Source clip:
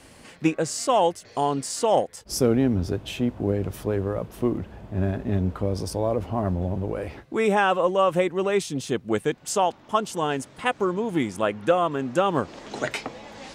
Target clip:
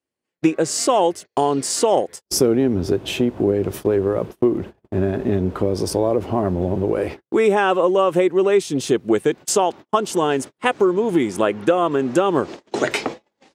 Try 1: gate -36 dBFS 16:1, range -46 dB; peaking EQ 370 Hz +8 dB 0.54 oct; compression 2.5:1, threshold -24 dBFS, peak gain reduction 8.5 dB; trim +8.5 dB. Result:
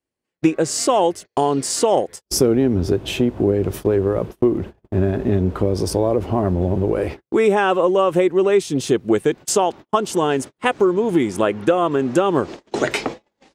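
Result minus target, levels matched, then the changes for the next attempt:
125 Hz band +3.0 dB
add after compression: high-pass 130 Hz 6 dB/octave

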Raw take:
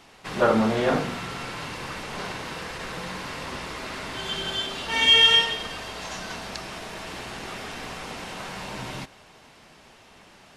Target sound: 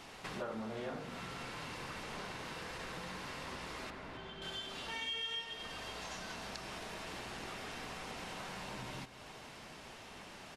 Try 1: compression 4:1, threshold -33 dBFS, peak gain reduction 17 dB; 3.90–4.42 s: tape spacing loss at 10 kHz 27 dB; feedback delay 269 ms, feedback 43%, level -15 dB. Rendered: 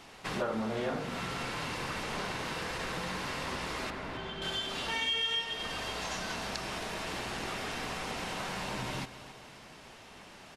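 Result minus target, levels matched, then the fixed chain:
compression: peak gain reduction -8.5 dB
compression 4:1, threshold -44 dBFS, peak gain reduction 25 dB; 3.90–4.42 s: tape spacing loss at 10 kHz 27 dB; feedback delay 269 ms, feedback 43%, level -15 dB

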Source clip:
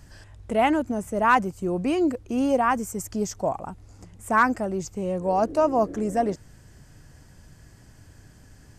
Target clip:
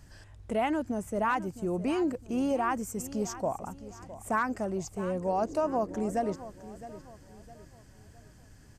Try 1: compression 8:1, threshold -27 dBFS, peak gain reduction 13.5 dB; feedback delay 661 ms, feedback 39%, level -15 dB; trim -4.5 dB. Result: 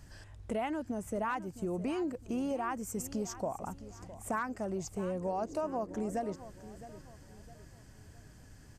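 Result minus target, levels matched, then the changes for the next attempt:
compression: peak gain reduction +6.5 dB
change: compression 8:1, threshold -19.5 dBFS, peak gain reduction 7 dB

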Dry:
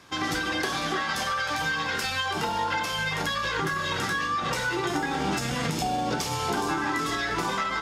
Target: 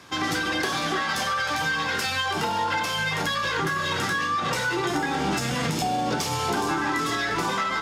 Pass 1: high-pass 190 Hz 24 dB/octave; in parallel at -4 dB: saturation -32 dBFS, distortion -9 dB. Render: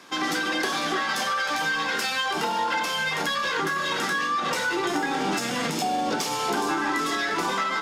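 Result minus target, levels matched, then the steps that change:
125 Hz band -8.5 dB
change: high-pass 65 Hz 24 dB/octave

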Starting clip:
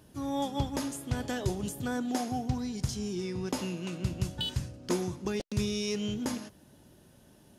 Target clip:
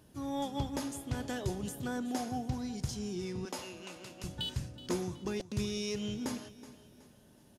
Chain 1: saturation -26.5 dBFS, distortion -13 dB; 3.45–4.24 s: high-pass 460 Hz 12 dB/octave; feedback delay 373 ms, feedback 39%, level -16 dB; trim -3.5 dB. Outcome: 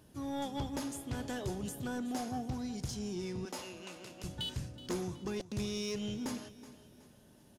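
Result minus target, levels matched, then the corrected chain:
saturation: distortion +13 dB
saturation -17 dBFS, distortion -27 dB; 3.45–4.24 s: high-pass 460 Hz 12 dB/octave; feedback delay 373 ms, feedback 39%, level -16 dB; trim -3.5 dB

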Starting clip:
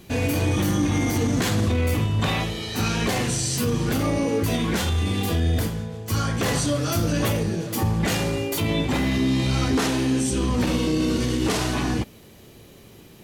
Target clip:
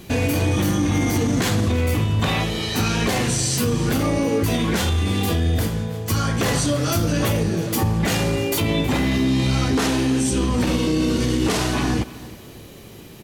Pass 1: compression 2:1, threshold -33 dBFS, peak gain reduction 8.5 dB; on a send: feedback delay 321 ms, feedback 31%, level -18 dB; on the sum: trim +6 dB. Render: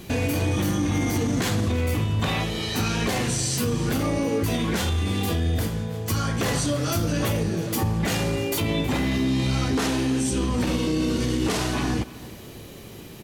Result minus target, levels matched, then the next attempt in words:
compression: peak gain reduction +3.5 dB
compression 2:1, threshold -25.5 dBFS, peak gain reduction 5 dB; on a send: feedback delay 321 ms, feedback 31%, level -18 dB; on the sum: trim +6 dB

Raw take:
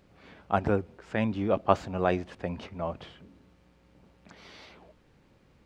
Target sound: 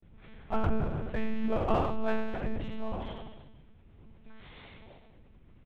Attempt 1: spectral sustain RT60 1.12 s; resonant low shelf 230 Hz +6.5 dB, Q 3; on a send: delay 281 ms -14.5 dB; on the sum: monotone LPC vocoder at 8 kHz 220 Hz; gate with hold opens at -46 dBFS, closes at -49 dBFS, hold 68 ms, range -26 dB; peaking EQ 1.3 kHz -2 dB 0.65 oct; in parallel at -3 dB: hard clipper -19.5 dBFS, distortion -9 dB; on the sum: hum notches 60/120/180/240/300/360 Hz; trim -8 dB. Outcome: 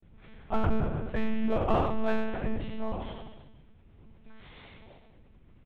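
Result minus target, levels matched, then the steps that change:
hard clipper: distortion -6 dB
change: hard clipper -28.5 dBFS, distortion -3 dB

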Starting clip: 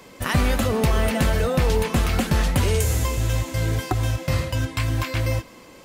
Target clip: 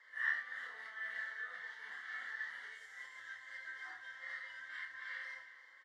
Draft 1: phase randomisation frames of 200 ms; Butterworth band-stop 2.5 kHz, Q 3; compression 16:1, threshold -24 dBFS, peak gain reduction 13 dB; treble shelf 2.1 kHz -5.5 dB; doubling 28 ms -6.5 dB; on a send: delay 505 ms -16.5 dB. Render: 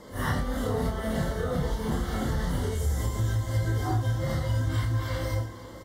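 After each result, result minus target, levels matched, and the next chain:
2 kHz band -14.5 dB; echo 155 ms late
phase randomisation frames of 200 ms; Butterworth band-stop 2.5 kHz, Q 3; compression 16:1, threshold -24 dBFS, peak gain reduction 13 dB; ladder band-pass 1.9 kHz, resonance 80%; treble shelf 2.1 kHz -5.5 dB; doubling 28 ms -6.5 dB; on a send: delay 505 ms -16.5 dB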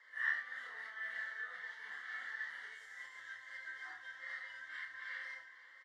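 echo 155 ms late
phase randomisation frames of 200 ms; Butterworth band-stop 2.5 kHz, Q 3; compression 16:1, threshold -24 dBFS, peak gain reduction 13 dB; ladder band-pass 1.9 kHz, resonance 80%; treble shelf 2.1 kHz -5.5 dB; doubling 28 ms -6.5 dB; on a send: delay 350 ms -16.5 dB

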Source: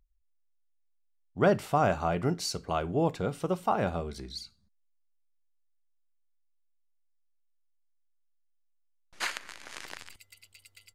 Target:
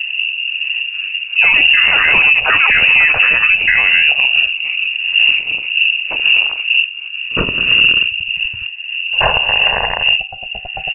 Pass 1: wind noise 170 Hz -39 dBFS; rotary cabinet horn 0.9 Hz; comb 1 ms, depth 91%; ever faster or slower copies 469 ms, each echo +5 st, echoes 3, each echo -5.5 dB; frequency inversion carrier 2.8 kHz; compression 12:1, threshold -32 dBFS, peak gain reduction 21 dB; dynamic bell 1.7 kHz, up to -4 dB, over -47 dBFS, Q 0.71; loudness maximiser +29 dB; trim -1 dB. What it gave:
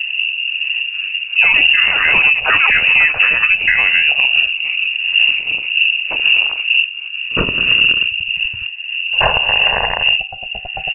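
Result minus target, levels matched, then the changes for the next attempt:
compression: peak gain reduction +7 dB
change: compression 12:1, threshold -24.5 dBFS, peak gain reduction 14 dB

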